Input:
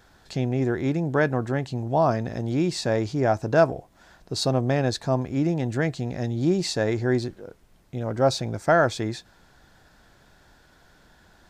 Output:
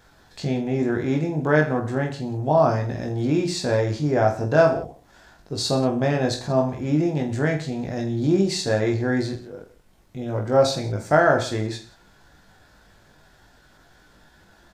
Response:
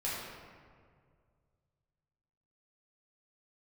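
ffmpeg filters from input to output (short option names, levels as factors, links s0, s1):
-af "atempo=0.78,aecho=1:1:20|46|79.8|123.7|180.9:0.631|0.398|0.251|0.158|0.1"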